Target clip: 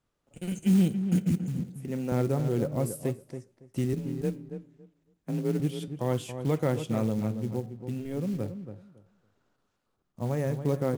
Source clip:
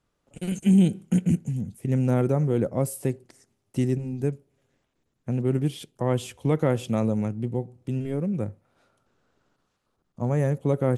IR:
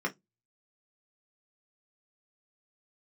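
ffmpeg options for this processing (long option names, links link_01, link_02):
-filter_complex "[0:a]asettb=1/sr,asplit=3[link_01][link_02][link_03];[link_01]atrim=end=1.604[link_04];[link_02]atrim=start=1.6:end=2.12,asetpts=PTS-STARTPTS,afade=type=in:duration=0.004:curve=qsin,afade=type=out:start_time=0.516:duration=0.004:curve=qsin,highpass=240[link_05];[link_03]atrim=start=2.116[link_06];[link_04][link_05]acrossfade=duration=0.004:curve1=hsin:curve2=qsin[link_07];[link_07][link_06]acrossfade=duration=0.004:curve1=qsin:curve2=hsin,asettb=1/sr,asplit=3[link_08][link_09][link_10];[link_08]atrim=end=3.934[link_11];[link_09]atrim=start=3.93:end=5.6,asetpts=PTS-STARTPTS,afade=type=in:duration=0.004:curve=qsin,afade=type=out:start_time=1.666:duration=0.004:curve=qsin,afreqshift=33[link_12];[link_10]atrim=start=5.596[link_13];[link_11][link_12]acrossfade=duration=0.004:curve1=hsin:curve2=qsin[link_14];[link_14][link_13]acrossfade=duration=0.004:curve1=qsin:curve2=hsin,flanger=delay=7.9:depth=3.9:regen=-82:speed=0.32:shape=triangular,acrusher=bits=6:mode=log:mix=0:aa=0.000001,asplit=2[link_15][link_16];[link_16]adelay=279,lowpass=frequency=1600:poles=1,volume=-9dB,asplit=2[link_17][link_18];[link_18]adelay=279,lowpass=frequency=1600:poles=1,volume=0.19,asplit=2[link_19][link_20];[link_20]adelay=279,lowpass=frequency=1600:poles=1,volume=0.19[link_21];[link_15][link_17][link_19][link_21]amix=inputs=4:normalize=0"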